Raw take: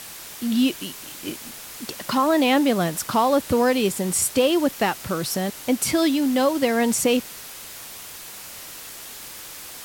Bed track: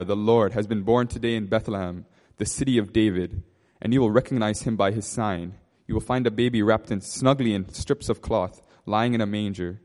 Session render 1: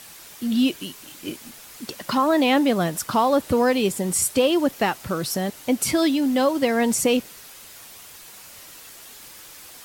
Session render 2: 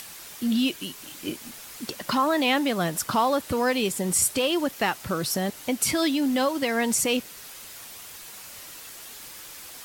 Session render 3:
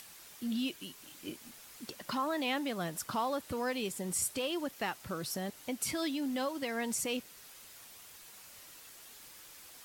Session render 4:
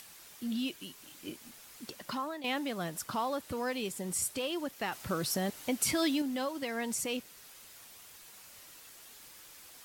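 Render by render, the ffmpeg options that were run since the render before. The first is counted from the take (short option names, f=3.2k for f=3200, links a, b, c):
-af "afftdn=nr=6:nf=-39"
-filter_complex "[0:a]acrossover=split=1000[a][b];[a]alimiter=limit=-19dB:level=0:latency=1:release=359[c];[b]acompressor=mode=upward:threshold=-38dB:ratio=2.5[d];[c][d]amix=inputs=2:normalize=0"
-af "volume=-11dB"
-filter_complex "[0:a]asettb=1/sr,asplit=3[a][b][c];[a]atrim=end=4.924[d];[b]atrim=start=4.92:end=6.22,asetpts=PTS-STARTPTS,afade=t=in:d=0.004:c=qsin,afade=t=out:st=1.296:d=0.004:c=qsin,acontrast=28[e];[c]atrim=start=6.216[f];[d][e]acrossfade=d=0.004:c1=hsin:c2=qsin[g];[g][f]acrossfade=d=0.004:c1=qsin:c2=hsin,asplit=2[h][i];[h]atrim=end=2.44,asetpts=PTS-STARTPTS,afade=t=out:st=1.94:d=0.5:c=qsin:silence=0.251189[j];[i]atrim=start=2.44,asetpts=PTS-STARTPTS,afade=t=in:d=0.004:c=hsin:silence=0.251189[k];[j][k]concat=n=2:v=0:a=1"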